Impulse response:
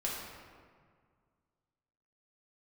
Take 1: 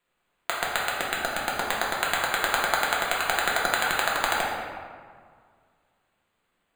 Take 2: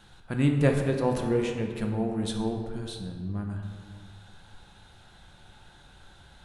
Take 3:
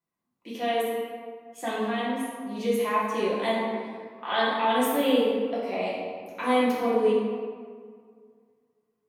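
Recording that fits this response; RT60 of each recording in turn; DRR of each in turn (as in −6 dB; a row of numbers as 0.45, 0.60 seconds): 1; 1.9, 1.9, 1.9 seconds; −5.0, 2.0, −9.0 decibels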